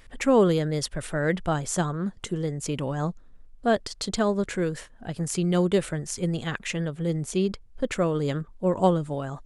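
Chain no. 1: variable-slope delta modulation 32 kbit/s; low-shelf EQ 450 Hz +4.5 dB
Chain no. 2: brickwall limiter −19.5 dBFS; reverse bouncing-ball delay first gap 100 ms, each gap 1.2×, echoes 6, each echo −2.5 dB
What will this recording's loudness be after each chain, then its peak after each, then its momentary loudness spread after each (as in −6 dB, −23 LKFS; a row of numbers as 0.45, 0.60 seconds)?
−24.0, −26.5 LKFS; −7.5, −11.5 dBFS; 9, 5 LU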